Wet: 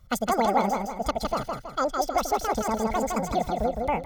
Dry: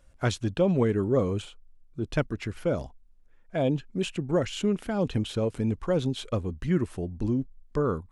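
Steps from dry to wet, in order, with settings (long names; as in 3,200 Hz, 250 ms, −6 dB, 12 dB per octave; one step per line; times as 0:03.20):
notch filter 1,400 Hz, Q 5.2
comb filter 2.9 ms, depth 61%
repeating echo 323 ms, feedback 41%, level −4 dB
wrong playback speed 7.5 ips tape played at 15 ips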